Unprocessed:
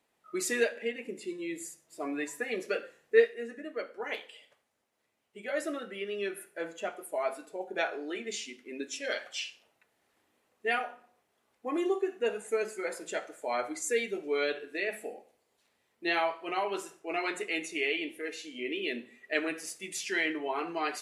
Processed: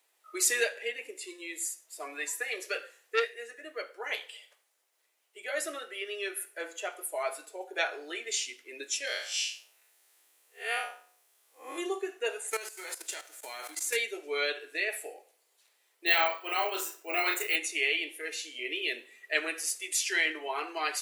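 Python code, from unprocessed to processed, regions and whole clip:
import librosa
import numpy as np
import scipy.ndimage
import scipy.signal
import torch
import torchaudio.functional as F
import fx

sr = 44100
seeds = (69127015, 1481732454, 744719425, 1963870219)

y = fx.chain(x, sr, fx.low_shelf(hz=250.0, db=-10.5),
    fx.transformer_sat(knee_hz=1300.0), at=(1.11, 3.62))
y = fx.chain(y, sr, fx.spec_blur(span_ms=129.0),
    fx.high_shelf(hz=4200.0, db=9.0), at=(9.07, 11.78))
y = fx.envelope_flatten(y, sr, power=0.6, at=(12.5, 13.95), fade=0.02)
y = fx.level_steps(y, sr, step_db=14, at=(12.5, 13.95), fade=0.02)
y = fx.chain(y, sr, fx.doubler(ms=34.0, db=-2.5),
    fx.resample_bad(factor=2, down='filtered', up='hold'), at=(16.06, 17.56))
y = scipy.signal.sosfilt(scipy.signal.butter(6, 320.0, 'highpass', fs=sr, output='sos'), y)
y = fx.tilt_eq(y, sr, slope=3.0)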